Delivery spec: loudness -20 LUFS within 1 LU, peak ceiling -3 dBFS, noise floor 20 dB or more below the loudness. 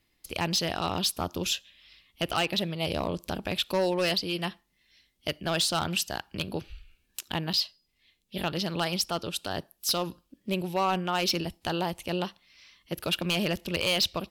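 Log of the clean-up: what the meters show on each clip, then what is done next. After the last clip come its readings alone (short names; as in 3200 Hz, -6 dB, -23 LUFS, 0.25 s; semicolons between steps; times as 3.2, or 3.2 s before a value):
clipped 0.7%; flat tops at -19.5 dBFS; dropouts 1; longest dropout 6.9 ms; loudness -29.5 LUFS; peak -19.5 dBFS; loudness target -20.0 LUFS
-> clip repair -19.5 dBFS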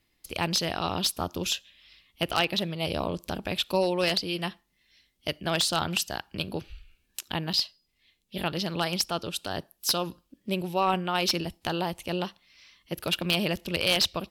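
clipped 0.0%; dropouts 1; longest dropout 6.9 ms
-> interpolate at 7.53, 6.9 ms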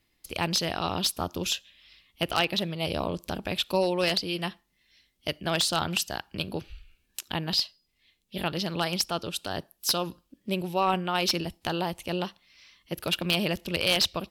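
dropouts 0; loudness -28.5 LUFS; peak -10.5 dBFS; loudness target -20.0 LUFS
-> gain +8.5 dB; limiter -3 dBFS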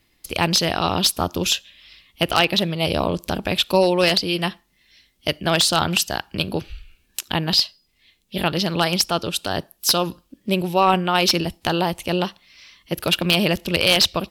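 loudness -20.5 LUFS; peak -3.0 dBFS; noise floor -65 dBFS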